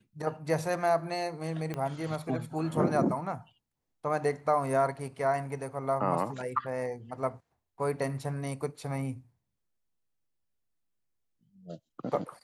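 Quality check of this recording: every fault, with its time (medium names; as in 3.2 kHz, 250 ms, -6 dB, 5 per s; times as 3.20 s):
1.74 s: pop -21 dBFS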